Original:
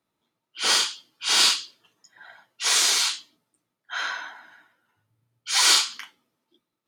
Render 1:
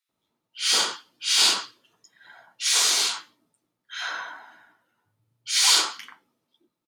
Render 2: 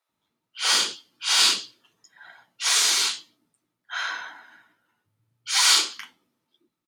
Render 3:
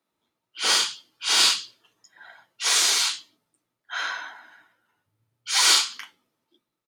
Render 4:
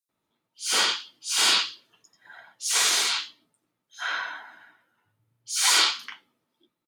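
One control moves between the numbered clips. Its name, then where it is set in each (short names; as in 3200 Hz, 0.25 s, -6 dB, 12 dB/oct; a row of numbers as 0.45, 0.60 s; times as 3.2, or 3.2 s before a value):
bands offset in time, split: 1700, 530, 160, 5100 Hz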